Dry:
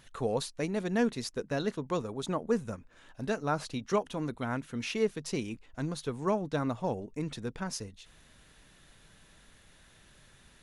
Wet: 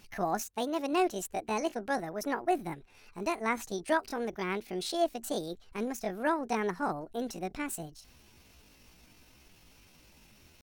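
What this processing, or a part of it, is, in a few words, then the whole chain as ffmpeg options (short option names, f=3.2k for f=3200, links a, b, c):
chipmunk voice: -filter_complex "[0:a]asetrate=68011,aresample=44100,atempo=0.64842,asettb=1/sr,asplit=3[a][b][c];[a]atrim=end=0.414[d];[b]atrim=start=0.41:end=0.93,asetpts=PTS-STARTPTS,afade=t=in:d=0.004:c=qsin,afade=t=out:st=0.516:d=0.004:c=qsin,highpass=46[e];[c]atrim=start=0.926[f];[d][e]acrossfade=d=0.004:c1=hsin:c2=qsin[g];[g][f]acrossfade=d=0.004:c1=qsin:c2=hsin"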